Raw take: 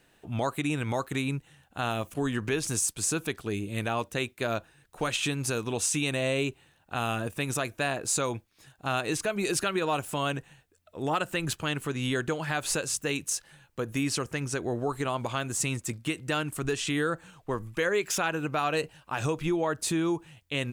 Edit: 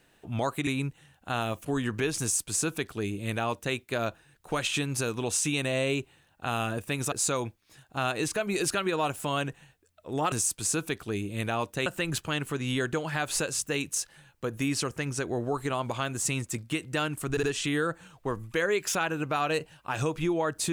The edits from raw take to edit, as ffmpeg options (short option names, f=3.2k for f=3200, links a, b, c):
-filter_complex "[0:a]asplit=7[a][b][c][d][e][f][g];[a]atrim=end=0.672[h];[b]atrim=start=1.158:end=7.612[i];[c]atrim=start=8.008:end=11.212[j];[d]atrim=start=2.698:end=4.242[k];[e]atrim=start=11.208:end=16.722[l];[f]atrim=start=16.658:end=16.722[m];[g]atrim=start=16.658[n];[h][i]acrossfade=d=0.004:c1=hsin:c2=hsin[o];[o][j]acrossfade=d=0.004:c1=hsin:c2=hsin[p];[p][k]acrossfade=d=0.004:c1=hsin:c2=hsin[q];[q][l]acrossfade=d=0.004:c1=hsin:c2=hsin[r];[r][m]acrossfade=d=0.004:c1=hsin:c2=hsin[s];[s][n]acrossfade=d=0.004:c1=hsin:c2=hsin"